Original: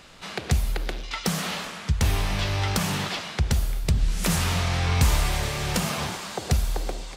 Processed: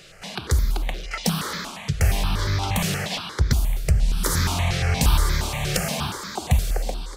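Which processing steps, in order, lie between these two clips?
step phaser 8.5 Hz 250–2800 Hz; gain +4.5 dB

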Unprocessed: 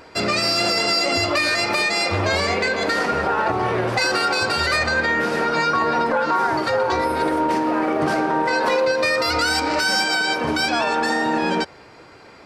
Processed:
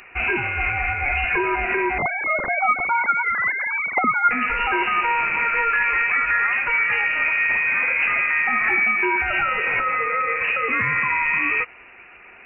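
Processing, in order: 1.98–4.31 sine-wave speech; soft clip -7.5 dBFS, distortion -28 dB; inverted band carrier 2800 Hz

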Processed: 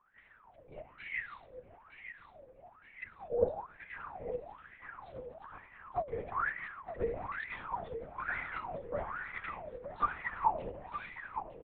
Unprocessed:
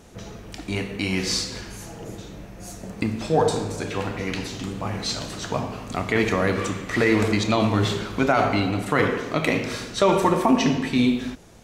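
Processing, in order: Wiener smoothing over 9 samples; tilt +2 dB/oct; in parallel at -9.5 dB: bit-crush 7-bit; on the sum: wah 1.1 Hz 500–2000 Hz, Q 21; on a send: feedback echo 0.915 s, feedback 48%, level -10 dB; on the sum: LPC vocoder at 8 kHz whisper; gain +1 dB

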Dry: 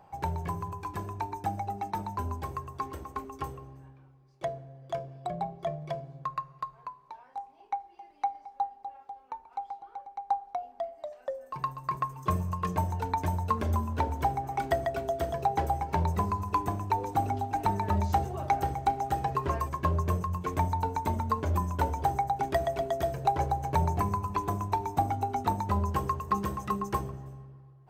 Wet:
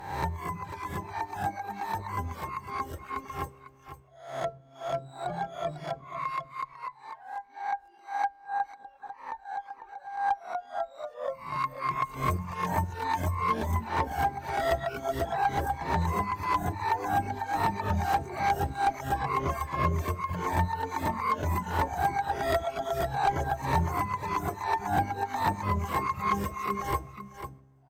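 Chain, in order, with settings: spectral swells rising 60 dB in 0.68 s; on a send: echo 0.499 s -9.5 dB; on the sum: one-sided clip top -19.5 dBFS, bottom -13.5 dBFS; harmoniser +12 st -13 dB; reverb removal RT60 1.6 s

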